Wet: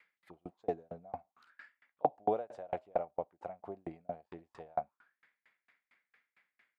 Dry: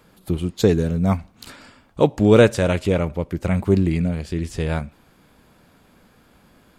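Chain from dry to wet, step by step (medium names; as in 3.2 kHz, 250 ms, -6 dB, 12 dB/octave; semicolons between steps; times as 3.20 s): auto-wah 720–2100 Hz, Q 8.4, down, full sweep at -21 dBFS; sawtooth tremolo in dB decaying 4.4 Hz, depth 37 dB; trim +7.5 dB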